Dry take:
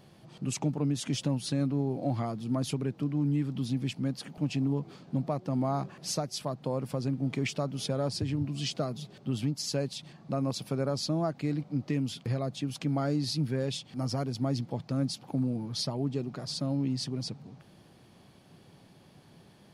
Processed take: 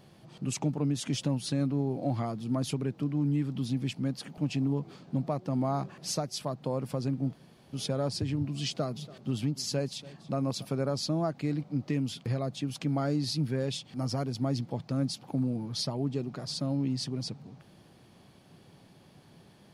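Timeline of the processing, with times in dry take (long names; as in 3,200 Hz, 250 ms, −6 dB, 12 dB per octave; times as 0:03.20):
0:07.33–0:07.73: fill with room tone
0:08.68–0:10.65: single-tap delay 285 ms −19.5 dB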